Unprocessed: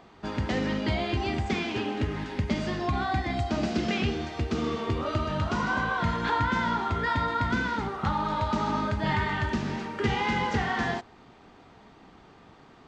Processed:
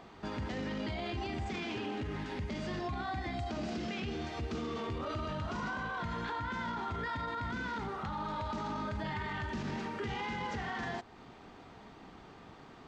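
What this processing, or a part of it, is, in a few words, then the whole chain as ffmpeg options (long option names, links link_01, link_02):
stacked limiters: -af "alimiter=limit=-19.5dB:level=0:latency=1:release=336,alimiter=level_in=2dB:limit=-24dB:level=0:latency=1:release=14,volume=-2dB,alimiter=level_in=6dB:limit=-24dB:level=0:latency=1:release=250,volume=-6dB"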